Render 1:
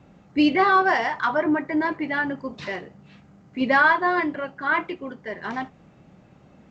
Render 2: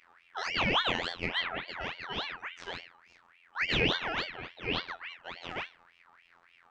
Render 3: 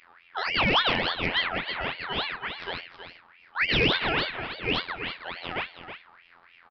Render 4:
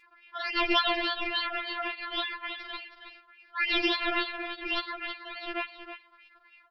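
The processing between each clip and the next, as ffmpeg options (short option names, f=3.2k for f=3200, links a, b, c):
-af "bandreject=f=104.6:t=h:w=4,bandreject=f=209.2:t=h:w=4,bandreject=f=313.8:t=h:w=4,bandreject=f=418.4:t=h:w=4,bandreject=f=523:t=h:w=4,bandreject=f=627.6:t=h:w=4,bandreject=f=732.2:t=h:w=4,bandreject=f=836.8:t=h:w=4,bandreject=f=941.4:t=h:w=4,bandreject=f=1.046k:t=h:w=4,bandreject=f=1.1506k:t=h:w=4,bandreject=f=1.2552k:t=h:w=4,bandreject=f=1.3598k:t=h:w=4,bandreject=f=1.4644k:t=h:w=4,bandreject=f=1.569k:t=h:w=4,bandreject=f=1.6736k:t=h:w=4,bandreject=f=1.7782k:t=h:w=4,bandreject=f=1.8828k:t=h:w=4,bandreject=f=1.9874k:t=h:w=4,bandreject=f=2.092k:t=h:w=4,bandreject=f=2.1966k:t=h:w=4,bandreject=f=2.3012k:t=h:w=4,bandreject=f=2.4058k:t=h:w=4,bandreject=f=2.5104k:t=h:w=4,bandreject=f=2.615k:t=h:w=4,bandreject=f=2.7196k:t=h:w=4,bandreject=f=2.8242k:t=h:w=4,bandreject=f=2.9288k:t=h:w=4,bandreject=f=3.0334k:t=h:w=4,bandreject=f=3.138k:t=h:w=4,bandreject=f=3.2426k:t=h:w=4,bandreject=f=3.3472k:t=h:w=4,bandreject=f=3.4518k:t=h:w=4,bandreject=f=3.5564k:t=h:w=4,afftfilt=real='hypot(re,im)*cos(PI*b)':imag='0':win_size=2048:overlap=0.75,aeval=exprs='val(0)*sin(2*PI*1800*n/s+1800*0.45/3.5*sin(2*PI*3.5*n/s))':c=same,volume=-4dB"
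-af "aecho=1:1:321:0.316,aresample=11025,asoftclip=type=hard:threshold=-20dB,aresample=44100,volume=6dB"
-af "afftfilt=real='re*4*eq(mod(b,16),0)':imag='im*4*eq(mod(b,16),0)':win_size=2048:overlap=0.75"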